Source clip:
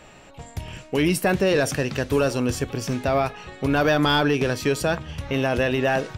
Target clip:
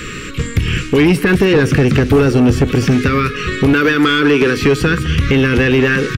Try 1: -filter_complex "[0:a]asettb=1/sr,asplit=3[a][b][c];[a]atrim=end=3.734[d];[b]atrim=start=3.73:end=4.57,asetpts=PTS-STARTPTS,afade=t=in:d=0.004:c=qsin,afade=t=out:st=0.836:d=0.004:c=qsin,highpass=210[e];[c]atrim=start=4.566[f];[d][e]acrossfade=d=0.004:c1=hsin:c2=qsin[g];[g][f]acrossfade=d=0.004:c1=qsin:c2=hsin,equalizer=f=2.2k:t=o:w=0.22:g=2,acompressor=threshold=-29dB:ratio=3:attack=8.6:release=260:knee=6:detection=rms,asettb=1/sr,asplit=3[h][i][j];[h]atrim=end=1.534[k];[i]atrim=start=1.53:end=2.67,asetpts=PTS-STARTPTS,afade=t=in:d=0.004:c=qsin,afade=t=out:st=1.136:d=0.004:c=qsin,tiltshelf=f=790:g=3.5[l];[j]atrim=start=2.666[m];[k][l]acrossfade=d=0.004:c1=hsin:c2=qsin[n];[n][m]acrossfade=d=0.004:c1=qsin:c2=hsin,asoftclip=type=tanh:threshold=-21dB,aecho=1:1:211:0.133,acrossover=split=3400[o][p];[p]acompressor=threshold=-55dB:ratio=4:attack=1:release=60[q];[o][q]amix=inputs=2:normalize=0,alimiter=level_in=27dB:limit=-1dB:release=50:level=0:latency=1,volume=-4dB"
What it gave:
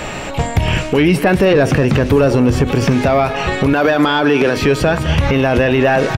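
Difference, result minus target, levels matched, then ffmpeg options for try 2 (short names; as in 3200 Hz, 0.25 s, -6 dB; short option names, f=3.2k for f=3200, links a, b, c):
soft clip: distortion -7 dB; 1000 Hz band +4.5 dB
-filter_complex "[0:a]asettb=1/sr,asplit=3[a][b][c];[a]atrim=end=3.734[d];[b]atrim=start=3.73:end=4.57,asetpts=PTS-STARTPTS,afade=t=in:d=0.004:c=qsin,afade=t=out:st=0.836:d=0.004:c=qsin,highpass=210[e];[c]atrim=start=4.566[f];[d][e]acrossfade=d=0.004:c1=hsin:c2=qsin[g];[g][f]acrossfade=d=0.004:c1=qsin:c2=hsin,equalizer=f=2.2k:t=o:w=0.22:g=2,acompressor=threshold=-29dB:ratio=3:attack=8.6:release=260:knee=6:detection=rms,asuperstop=centerf=740:order=8:qfactor=1.1,asettb=1/sr,asplit=3[h][i][j];[h]atrim=end=1.534[k];[i]atrim=start=1.53:end=2.67,asetpts=PTS-STARTPTS,afade=t=in:d=0.004:c=qsin,afade=t=out:st=1.136:d=0.004:c=qsin,tiltshelf=f=790:g=3.5[l];[j]atrim=start=2.666[m];[k][l]acrossfade=d=0.004:c1=hsin:c2=qsin[n];[n][m]acrossfade=d=0.004:c1=qsin:c2=hsin,asoftclip=type=tanh:threshold=-28dB,aecho=1:1:211:0.133,acrossover=split=3400[o][p];[p]acompressor=threshold=-55dB:ratio=4:attack=1:release=60[q];[o][q]amix=inputs=2:normalize=0,alimiter=level_in=27dB:limit=-1dB:release=50:level=0:latency=1,volume=-4dB"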